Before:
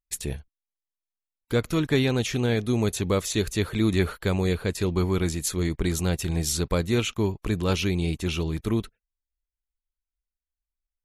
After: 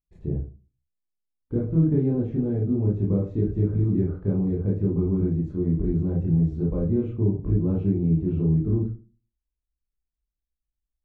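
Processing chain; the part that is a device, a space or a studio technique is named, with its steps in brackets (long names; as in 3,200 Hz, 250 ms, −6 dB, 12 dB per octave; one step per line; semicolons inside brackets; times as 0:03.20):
television next door (downward compressor 3 to 1, threshold −24 dBFS, peak gain reduction 6 dB; low-pass filter 370 Hz 12 dB per octave; convolution reverb RT60 0.35 s, pre-delay 20 ms, DRR −4 dB)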